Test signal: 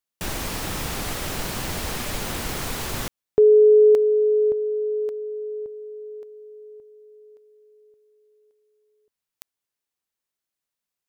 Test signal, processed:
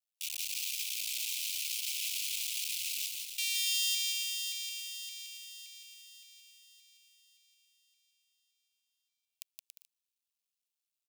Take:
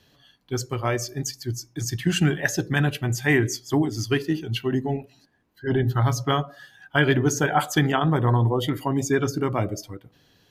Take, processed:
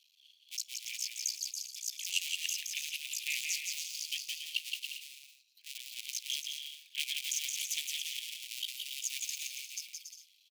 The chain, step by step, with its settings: cycle switcher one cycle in 2, muted; steep high-pass 2.4 kHz 72 dB/octave; on a send: bouncing-ball echo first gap 170 ms, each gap 0.65×, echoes 5; on the sum: trim -2 dB

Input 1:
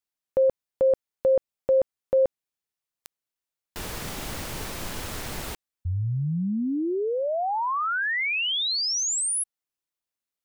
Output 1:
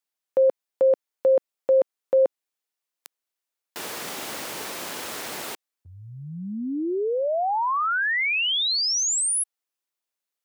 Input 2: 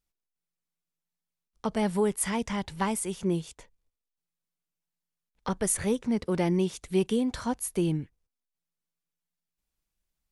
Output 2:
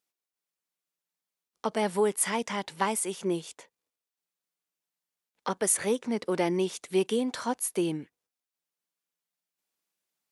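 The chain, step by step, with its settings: high-pass 310 Hz 12 dB/octave; trim +2.5 dB

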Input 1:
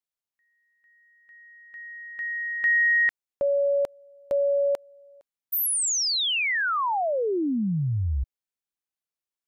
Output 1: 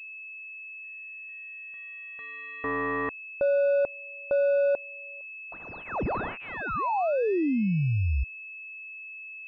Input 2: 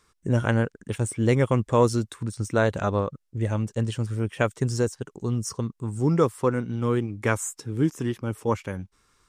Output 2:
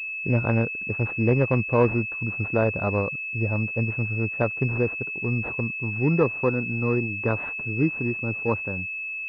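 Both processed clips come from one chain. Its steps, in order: class-D stage that switches slowly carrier 2.6 kHz

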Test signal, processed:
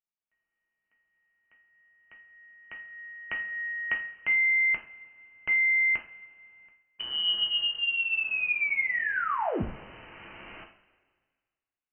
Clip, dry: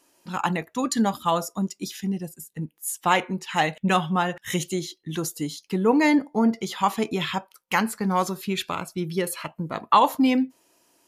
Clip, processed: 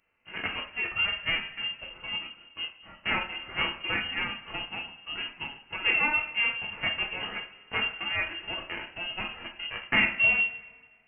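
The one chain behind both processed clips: formants flattened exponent 0.3; two-slope reverb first 0.36 s, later 1.7 s, from -17 dB, DRR 0 dB; frequency inversion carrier 3 kHz; trim -8.5 dB

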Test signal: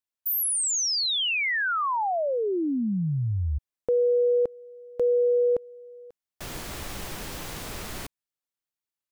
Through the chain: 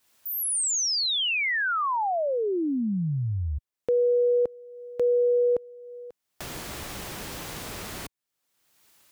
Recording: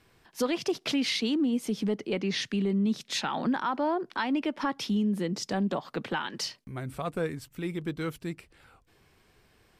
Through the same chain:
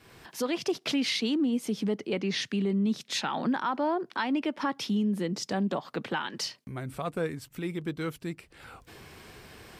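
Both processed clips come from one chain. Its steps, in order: fade-in on the opening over 0.57 s; high-pass 63 Hz 6 dB/octave; upward compressor, threshold -35 dBFS

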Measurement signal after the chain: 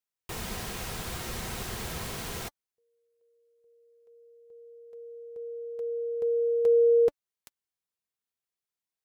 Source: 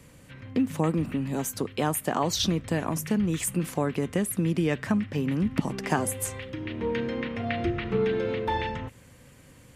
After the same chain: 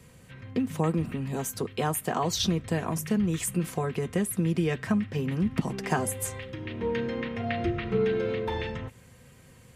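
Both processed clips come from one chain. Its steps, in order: comb of notches 290 Hz

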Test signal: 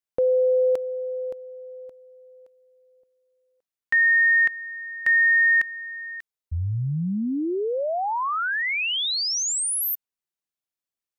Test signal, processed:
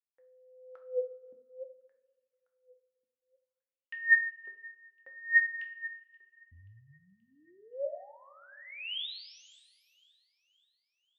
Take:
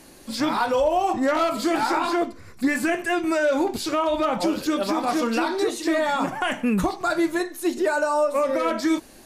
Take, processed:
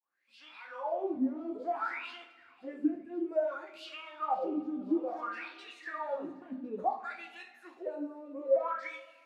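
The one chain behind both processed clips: fade-in on the opening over 0.98 s; wah-wah 0.58 Hz 240–2900 Hz, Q 13; feedback echo behind a high-pass 529 ms, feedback 51%, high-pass 3.5 kHz, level -20.5 dB; two-slope reverb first 0.42 s, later 2 s, from -18 dB, DRR 3.5 dB

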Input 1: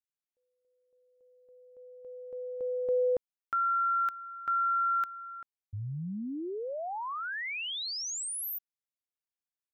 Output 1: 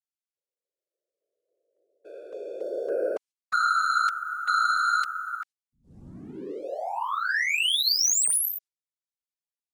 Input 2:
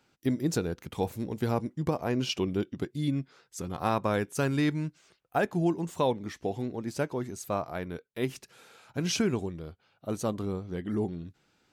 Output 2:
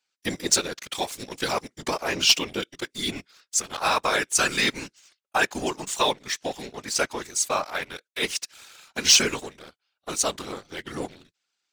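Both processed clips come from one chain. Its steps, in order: frequency weighting ITU-R 468; gate -54 dBFS, range -12 dB; waveshaping leveller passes 2; whisper effect

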